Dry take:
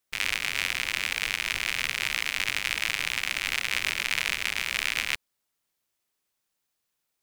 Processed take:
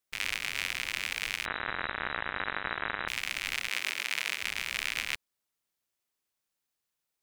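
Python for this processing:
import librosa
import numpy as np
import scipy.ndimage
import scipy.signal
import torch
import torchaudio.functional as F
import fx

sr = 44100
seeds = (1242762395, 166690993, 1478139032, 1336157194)

y = fx.freq_invert(x, sr, carrier_hz=3900, at=(1.45, 3.08))
y = fx.highpass(y, sr, hz=260.0, slope=12, at=(3.68, 4.42))
y = y * 10.0 ** (-5.0 / 20.0)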